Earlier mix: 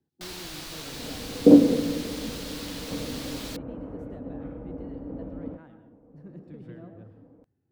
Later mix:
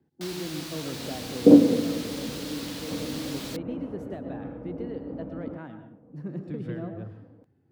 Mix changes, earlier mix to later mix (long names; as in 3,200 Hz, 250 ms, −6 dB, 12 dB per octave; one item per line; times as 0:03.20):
speech +10.0 dB
master: add high-pass filter 78 Hz